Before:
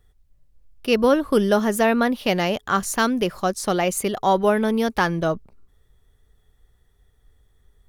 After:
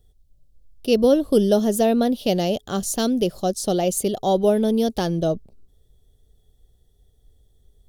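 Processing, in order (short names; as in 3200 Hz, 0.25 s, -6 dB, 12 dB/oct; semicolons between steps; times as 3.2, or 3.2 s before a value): band shelf 1500 Hz -15.5 dB; gain +1.5 dB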